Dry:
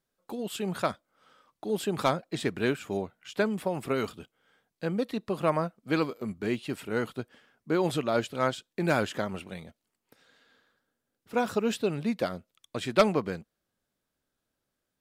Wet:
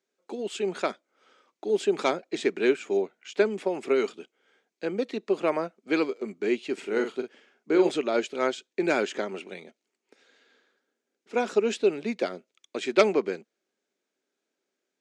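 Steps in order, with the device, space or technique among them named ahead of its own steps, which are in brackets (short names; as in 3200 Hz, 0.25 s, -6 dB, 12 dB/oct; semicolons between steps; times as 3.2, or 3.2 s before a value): 6.73–7.89 doubler 44 ms -7 dB; television speaker (speaker cabinet 230–7800 Hz, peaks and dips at 390 Hz +9 dB, 1100 Hz -4 dB, 2300 Hz +6 dB, 6500 Hz +5 dB)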